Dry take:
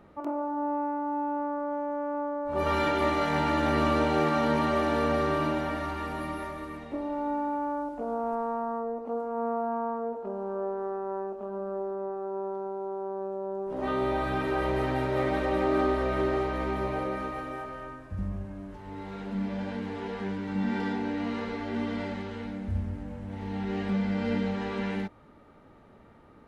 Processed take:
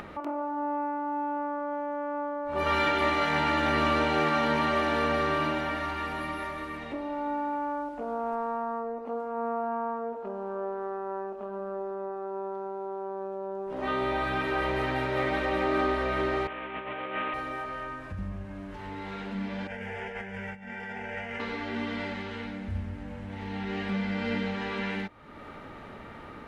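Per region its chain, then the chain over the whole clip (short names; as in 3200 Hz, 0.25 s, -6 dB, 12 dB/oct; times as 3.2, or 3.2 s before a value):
16.47–17.34 CVSD 16 kbps + negative-ratio compressor -34 dBFS, ratio -0.5 + HPF 280 Hz 6 dB/oct
19.67–21.4 fixed phaser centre 1100 Hz, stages 6 + negative-ratio compressor -40 dBFS, ratio -0.5
whole clip: upward compressor, threshold -31 dBFS; bell 2400 Hz +8.5 dB 2.3 oct; gain -3 dB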